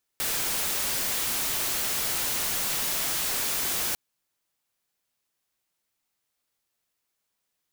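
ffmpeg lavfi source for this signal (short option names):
-f lavfi -i "anoisesrc=c=white:a=0.0689:d=3.75:r=44100:seed=1"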